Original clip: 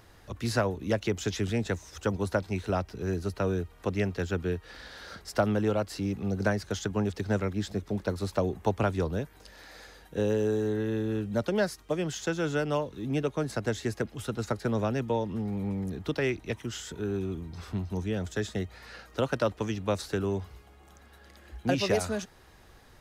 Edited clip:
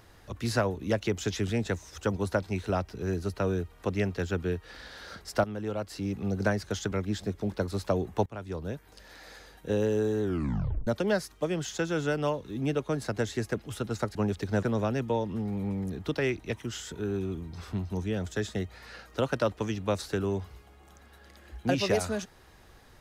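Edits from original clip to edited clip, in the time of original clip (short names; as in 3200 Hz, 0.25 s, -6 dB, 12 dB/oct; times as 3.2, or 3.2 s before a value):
5.44–6.23 fade in, from -12 dB
6.92–7.4 move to 14.63
8.74–9.79 fade in equal-power, from -22 dB
10.7 tape stop 0.65 s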